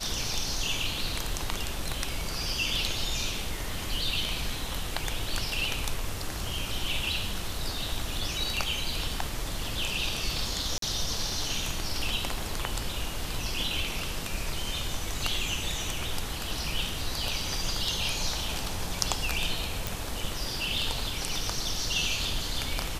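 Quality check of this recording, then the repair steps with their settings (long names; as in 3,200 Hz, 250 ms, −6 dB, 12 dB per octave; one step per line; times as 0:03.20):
0:10.78–0:10.82: drop-out 43 ms
0:19.87: click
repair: click removal
repair the gap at 0:10.78, 43 ms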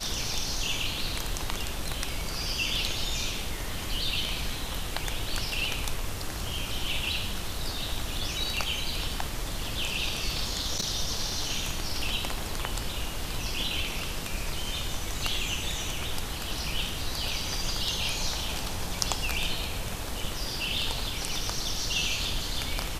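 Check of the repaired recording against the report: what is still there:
none of them is left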